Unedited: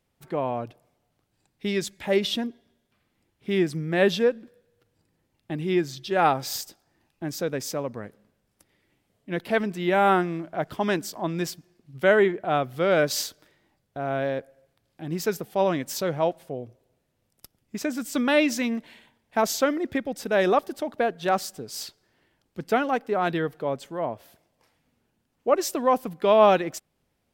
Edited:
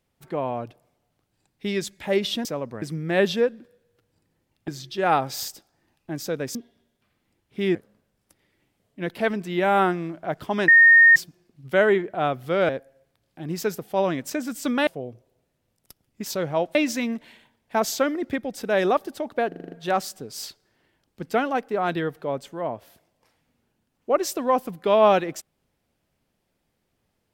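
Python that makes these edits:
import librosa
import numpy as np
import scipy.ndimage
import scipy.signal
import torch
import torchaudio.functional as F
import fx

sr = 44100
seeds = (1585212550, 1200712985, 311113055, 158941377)

y = fx.edit(x, sr, fx.swap(start_s=2.45, length_s=1.2, other_s=7.68, other_length_s=0.37),
    fx.cut(start_s=5.51, length_s=0.3),
    fx.bleep(start_s=10.98, length_s=0.48, hz=1840.0, db=-9.0),
    fx.cut(start_s=12.99, length_s=1.32),
    fx.swap(start_s=15.92, length_s=0.49, other_s=17.8, other_length_s=0.57),
    fx.stutter(start_s=21.1, slice_s=0.04, count=7), tone=tone)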